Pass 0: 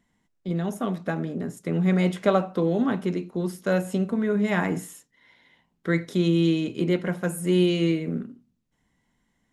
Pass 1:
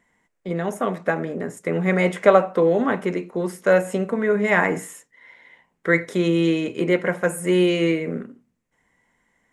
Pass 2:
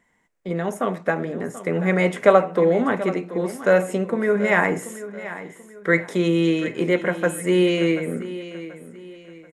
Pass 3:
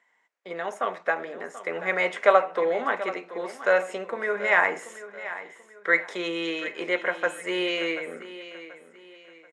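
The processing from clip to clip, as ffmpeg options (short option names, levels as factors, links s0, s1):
-af "equalizer=f=500:t=o:w=1:g=10,equalizer=f=1000:t=o:w=1:g=6,equalizer=f=2000:t=o:w=1:g=12,equalizer=f=4000:t=o:w=1:g=-3,equalizer=f=8000:t=o:w=1:g=8,volume=0.75"
-af "aecho=1:1:734|1468|2202:0.188|0.0678|0.0244"
-af "highpass=670,lowpass=5400"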